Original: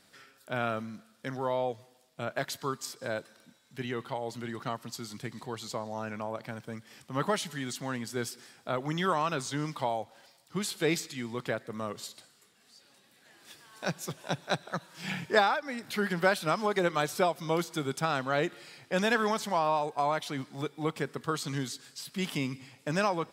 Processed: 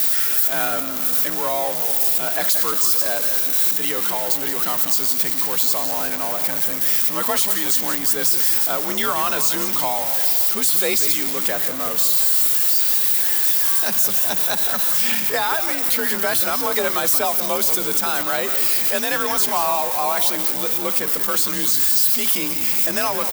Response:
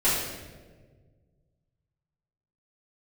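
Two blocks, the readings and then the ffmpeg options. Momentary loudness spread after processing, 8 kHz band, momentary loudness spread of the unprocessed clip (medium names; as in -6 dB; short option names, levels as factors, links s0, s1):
5 LU, +22.0 dB, 12 LU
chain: -filter_complex "[0:a]aeval=exprs='val(0)+0.5*0.0237*sgn(val(0))':c=same,aemphasis=mode=production:type=bsi,afreqshift=45,alimiter=limit=0.168:level=0:latency=1:release=80,highshelf=f=11000:g=5,asplit=6[s0][s1][s2][s3][s4][s5];[s1]adelay=179,afreqshift=-65,volume=0.282[s6];[s2]adelay=358,afreqshift=-130,volume=0.145[s7];[s3]adelay=537,afreqshift=-195,volume=0.0733[s8];[s4]adelay=716,afreqshift=-260,volume=0.0376[s9];[s5]adelay=895,afreqshift=-325,volume=0.0191[s10];[s0][s6][s7][s8][s9][s10]amix=inputs=6:normalize=0,volume=1.78"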